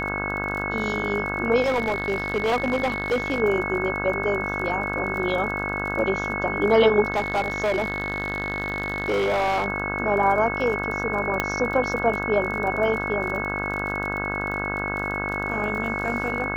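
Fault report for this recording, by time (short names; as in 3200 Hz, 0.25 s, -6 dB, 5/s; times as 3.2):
buzz 50 Hz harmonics 33 -30 dBFS
crackle 35/s -31 dBFS
tone 2200 Hz -28 dBFS
1.61–3.4 clipped -18.5 dBFS
7.12–9.66 clipped -19 dBFS
11.4 pop -7 dBFS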